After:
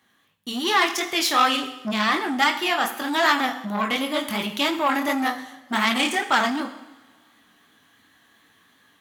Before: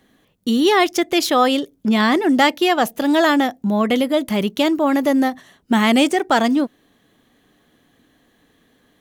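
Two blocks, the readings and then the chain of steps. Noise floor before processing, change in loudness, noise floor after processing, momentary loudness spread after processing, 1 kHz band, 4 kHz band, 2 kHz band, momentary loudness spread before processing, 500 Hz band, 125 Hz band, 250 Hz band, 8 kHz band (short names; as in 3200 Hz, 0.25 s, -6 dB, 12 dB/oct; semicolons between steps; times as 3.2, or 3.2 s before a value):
-61 dBFS, -5.0 dB, -63 dBFS, 8 LU, -2.5 dB, -1.0 dB, -0.5 dB, 6 LU, -10.0 dB, n/a, -10.5 dB, -1.0 dB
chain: HPF 67 Hz 24 dB/oct; resonant low shelf 760 Hz -8.5 dB, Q 1.5; AGC gain up to 5.5 dB; chorus 2.7 Hz, delay 18 ms, depth 6.8 ms; two-slope reverb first 0.74 s, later 2 s, from -18 dB, DRR 7 dB; core saturation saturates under 2200 Hz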